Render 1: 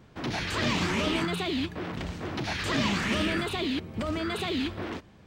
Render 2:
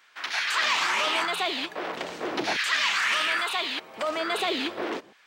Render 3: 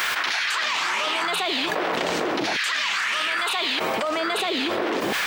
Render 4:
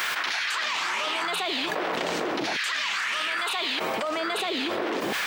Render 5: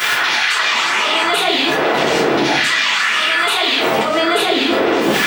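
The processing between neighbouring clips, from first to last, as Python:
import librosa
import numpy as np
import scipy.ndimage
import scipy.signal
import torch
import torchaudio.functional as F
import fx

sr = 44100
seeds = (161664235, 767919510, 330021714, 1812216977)

y1 = fx.filter_lfo_highpass(x, sr, shape='saw_down', hz=0.39, low_hz=360.0, high_hz=1700.0, q=1.3)
y1 = y1 * librosa.db_to_amplitude(5.0)
y2 = fx.quant_dither(y1, sr, seeds[0], bits=12, dither='triangular')
y2 = fx.env_flatten(y2, sr, amount_pct=100)
y2 = y2 * librosa.db_to_amplitude(-2.0)
y3 = scipy.signal.sosfilt(scipy.signal.butter(2, 79.0, 'highpass', fs=sr, output='sos'), y2)
y3 = y3 * librosa.db_to_amplitude(-3.5)
y4 = fx.room_shoebox(y3, sr, seeds[1], volume_m3=34.0, walls='mixed', distance_m=1.4)
y4 = y4 * librosa.db_to_amplitude(4.0)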